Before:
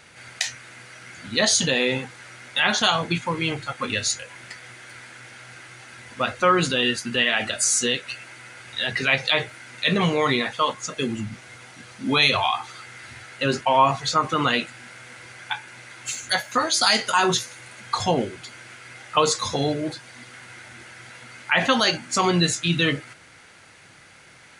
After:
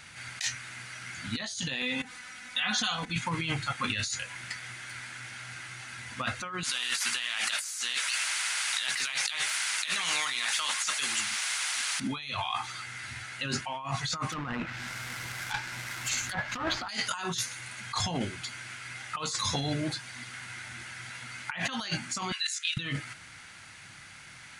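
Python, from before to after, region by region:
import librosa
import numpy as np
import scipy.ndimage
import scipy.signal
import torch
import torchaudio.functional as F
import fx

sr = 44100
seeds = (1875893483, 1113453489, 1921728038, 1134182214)

y = fx.chain(x, sr, fx.level_steps(step_db=16),
    fx.comb(ms=4.0, depth=0.83), at=(1.82, 3.16))
y = fx.chain(y, sr, fx.highpass(hz=1400.0, slope=12),
    fx.spectral_comp(ratio=2.0), at=(6.63, 12.0))
y = fx.chain(y, sr, fx.halfwave_hold(),
    fx.env_lowpass_down(base_hz=1400.0, full_db=-15.0), at=(14.32, 16.89))
y = fx.chain(y, sr, fx.level_steps(step_db=12),
    fx.highpass(hz=1500.0, slope=24), at=(22.32, 22.77))
y = fx.peak_eq(y, sr, hz=460.0, db=-13.0, octaves=1.3)
y = fx.over_compress(y, sr, threshold_db=-30.0, ratio=-1.0)
y = y * librosa.db_to_amplitude(-2.0)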